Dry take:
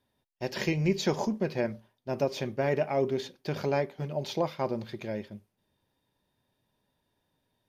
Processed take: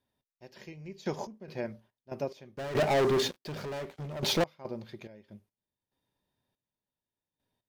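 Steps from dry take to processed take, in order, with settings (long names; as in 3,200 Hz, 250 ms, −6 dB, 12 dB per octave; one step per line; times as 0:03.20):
0:02.57–0:04.44: leveller curve on the samples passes 5
gate pattern "x....x.xx.x..xx" 71 BPM −12 dB
level −6 dB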